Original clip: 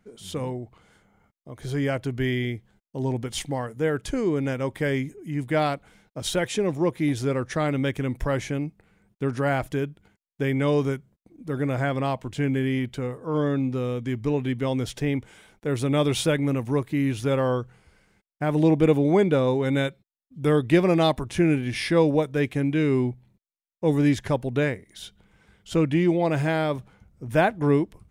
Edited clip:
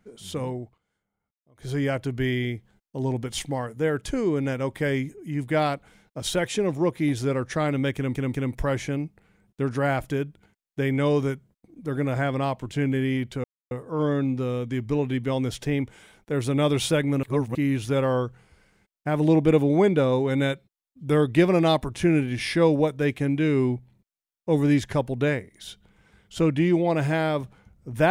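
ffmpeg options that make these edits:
-filter_complex "[0:a]asplit=8[s0][s1][s2][s3][s4][s5][s6][s7];[s0]atrim=end=0.78,asetpts=PTS-STARTPTS,afade=t=out:st=0.62:d=0.16:silence=0.0944061[s8];[s1]atrim=start=0.78:end=1.54,asetpts=PTS-STARTPTS,volume=0.0944[s9];[s2]atrim=start=1.54:end=8.152,asetpts=PTS-STARTPTS,afade=t=in:d=0.16:silence=0.0944061[s10];[s3]atrim=start=7.958:end=8.152[s11];[s4]atrim=start=7.958:end=13.06,asetpts=PTS-STARTPTS,afade=t=out:st=5.098:d=0.004:c=hsin,apad=pad_dur=0.27[s12];[s5]atrim=start=13.06:end=16.582,asetpts=PTS-STARTPTS,afade=t=in:d=0.004:c=hsin[s13];[s6]atrim=start=16.578:end=16.902,asetpts=PTS-STARTPTS,areverse[s14];[s7]atrim=start=16.898[s15];[s8][s9][s10]concat=n=3:v=0:a=1[s16];[s16][s11]acrossfade=d=0.004:c1=hsin:c2=hsin[s17];[s12][s13]concat=n=2:v=0:a=1[s18];[s17][s18]acrossfade=d=0.004:c1=hsin:c2=hsin[s19];[s19][s14]acrossfade=d=0.004:c1=hsin:c2=hsin[s20];[s20][s15]acrossfade=d=0.004:c1=hsin:c2=hsin"

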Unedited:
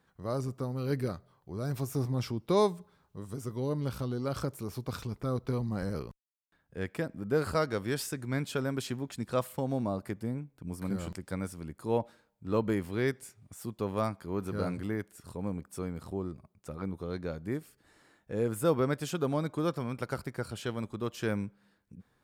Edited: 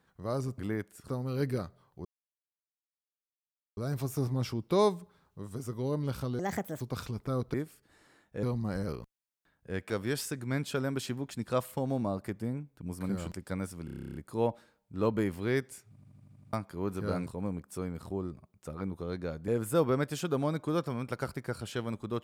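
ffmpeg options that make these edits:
-filter_complex "[0:a]asplit=29[s0][s1][s2][s3][s4][s5][s6][s7][s8][s9][s10][s11][s12][s13][s14][s15][s16][s17][s18][s19][s20][s21][s22][s23][s24][s25][s26][s27][s28];[s0]atrim=end=0.582[s29];[s1]atrim=start=14.778:end=15.282[s30];[s2]atrim=start=0.578:end=1.55,asetpts=PTS-STARTPTS,afade=t=out:st=0.968:d=0.004:c=hsin,apad=pad_dur=1.72[s31];[s3]atrim=start=1.55:end=4.174,asetpts=PTS-STARTPTS,afade=t=in:d=0.004:c=hsin[s32];[s4]atrim=start=4.17:end=4.77,asetpts=PTS-STARTPTS,asetrate=63063,aresample=44100,atrim=end_sample=18503,asetpts=PTS-STARTPTS[s33];[s5]atrim=start=4.766:end=5.502[s34];[s6]atrim=start=17.488:end=18.382[s35];[s7]atrim=start=5.498:end=6.972[s36];[s8]atrim=start=7.708:end=11.692[s37];[s9]atrim=start=11.658:end=11.692[s38];[s10]atrim=start=11.658:end=11.692[s39];[s11]atrim=start=11.658:end=11.692[s40];[s12]atrim=start=11.658:end=11.692[s41];[s13]atrim=start=11.658:end=11.692[s42];[s14]atrim=start=11.658:end=11.692[s43];[s15]atrim=start=11.658:end=11.692[s44];[s16]atrim=start=11.658:end=11.692[s45];[s17]atrim=start=11.658:end=11.692[s46];[s18]atrim=start=11.658:end=13.482[s47];[s19]atrim=start=13.398:end=13.482[s48];[s20]atrim=start=13.398:end=13.482[s49];[s21]atrim=start=13.398:end=13.482[s50];[s22]atrim=start=13.398:end=13.482[s51];[s23]atrim=start=13.398:end=13.482[s52];[s24]atrim=start=13.398:end=13.482[s53];[s25]atrim=start=13.398:end=13.482[s54];[s26]atrim=start=14.038:end=14.782[s55];[s27]atrim=start=15.278:end=17.492[s56];[s28]atrim=start=18.378[s57];[s29][s30]acrossfade=d=0.004:c1=hsin:c2=hsin[s58];[s31][s32]concat=n=2:v=0:a=1[s59];[s58][s59]acrossfade=d=0.004:c1=hsin:c2=hsin[s60];[s60][s33]acrossfade=d=0.004:c1=hsin:c2=hsin[s61];[s61][s34]acrossfade=d=0.004:c1=hsin:c2=hsin[s62];[s62][s35]acrossfade=d=0.004:c1=hsin:c2=hsin[s63];[s63][s36]acrossfade=d=0.004:c1=hsin:c2=hsin[s64];[s64][s37]acrossfade=d=0.004:c1=hsin:c2=hsin[s65];[s65][s38]acrossfade=d=0.004:c1=hsin:c2=hsin[s66];[s66][s39]acrossfade=d=0.004:c1=hsin:c2=hsin[s67];[s67][s40]acrossfade=d=0.004:c1=hsin:c2=hsin[s68];[s68][s41]acrossfade=d=0.004:c1=hsin:c2=hsin[s69];[s69][s42]acrossfade=d=0.004:c1=hsin:c2=hsin[s70];[s70][s43]acrossfade=d=0.004:c1=hsin:c2=hsin[s71];[s71][s44]acrossfade=d=0.004:c1=hsin:c2=hsin[s72];[s72][s45]acrossfade=d=0.004:c1=hsin:c2=hsin[s73];[s73][s46]acrossfade=d=0.004:c1=hsin:c2=hsin[s74];[s74][s47]acrossfade=d=0.004:c1=hsin:c2=hsin[s75];[s75][s48]acrossfade=d=0.004:c1=hsin:c2=hsin[s76];[s76][s49]acrossfade=d=0.004:c1=hsin:c2=hsin[s77];[s77][s50]acrossfade=d=0.004:c1=hsin:c2=hsin[s78];[s78][s51]acrossfade=d=0.004:c1=hsin:c2=hsin[s79];[s79][s52]acrossfade=d=0.004:c1=hsin:c2=hsin[s80];[s80][s53]acrossfade=d=0.004:c1=hsin:c2=hsin[s81];[s81][s54]acrossfade=d=0.004:c1=hsin:c2=hsin[s82];[s82][s55]acrossfade=d=0.004:c1=hsin:c2=hsin[s83];[s83][s56]acrossfade=d=0.004:c1=hsin:c2=hsin[s84];[s84][s57]acrossfade=d=0.004:c1=hsin:c2=hsin"

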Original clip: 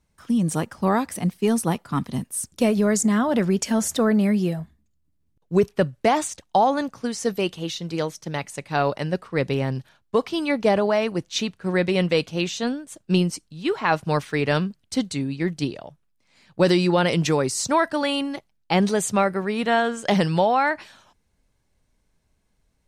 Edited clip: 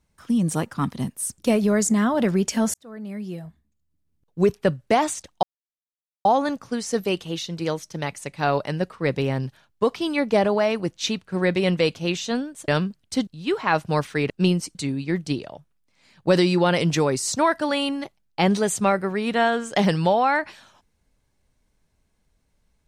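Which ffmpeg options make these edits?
-filter_complex "[0:a]asplit=8[s0][s1][s2][s3][s4][s5][s6][s7];[s0]atrim=end=0.742[s8];[s1]atrim=start=1.878:end=3.88,asetpts=PTS-STARTPTS,afade=t=out:st=1.998:d=0.004:c=hsin[s9];[s2]atrim=start=3.88:end=6.57,asetpts=PTS-STARTPTS,afade=t=in:d=1.77,afade=t=out:st=2.686:d=0.004:c=hsin,apad=pad_dur=0.82[s10];[s3]atrim=start=6.57:end=13.002,asetpts=PTS-STARTPTS,afade=t=in:d=0.004:c=hsin[s11];[s4]atrim=start=14.478:end=15.072[s12];[s5]atrim=start=13.448:end=14.482[s13];[s6]atrim=start=12.998:end=13.452[s14];[s7]atrim=start=15.068[s15];[s9][s10][s11]concat=n=3:v=0:a=1[s16];[s8][s16]acrossfade=d=0.004:c1=hsin:c2=hsin[s17];[s17][s12]acrossfade=d=0.004:c1=hsin:c2=hsin[s18];[s18][s13]acrossfade=d=0.004:c1=hsin:c2=hsin[s19];[s19][s14]acrossfade=d=0.004:c1=hsin:c2=hsin[s20];[s20][s15]acrossfade=d=0.004:c1=hsin:c2=hsin"

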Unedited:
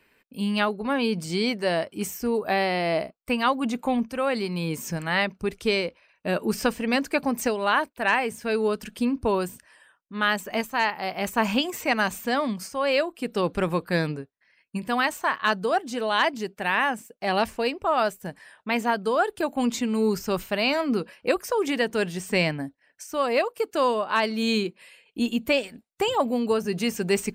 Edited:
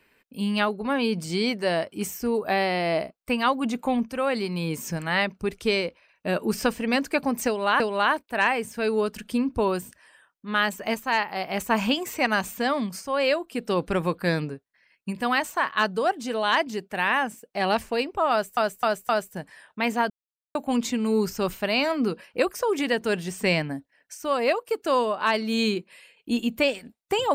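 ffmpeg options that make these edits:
-filter_complex "[0:a]asplit=7[s0][s1][s2][s3][s4][s5][s6];[s0]atrim=end=7.802[s7];[s1]atrim=start=7.468:end=18.242[s8];[s2]atrim=start=17.978:end=18.242[s9];[s3]atrim=start=17.978:end=18.242[s10];[s4]atrim=start=17.978:end=18.99,asetpts=PTS-STARTPTS,afade=t=out:st=1.008:d=0.004:c=hsin[s11];[s5]atrim=start=18.99:end=19.44,asetpts=PTS-STARTPTS,volume=0[s12];[s6]atrim=start=19.44,asetpts=PTS-STARTPTS,afade=t=in:d=0.004:c=hsin[s13];[s7][s8]acrossfade=d=0.004:c1=hsin:c2=hsin[s14];[s14][s9]acrossfade=d=0.004:c1=hsin:c2=hsin[s15];[s15][s10]acrossfade=d=0.004:c1=hsin:c2=hsin[s16];[s11][s12][s13]concat=n=3:v=0:a=1[s17];[s16][s17]acrossfade=d=0.004:c1=hsin:c2=hsin"

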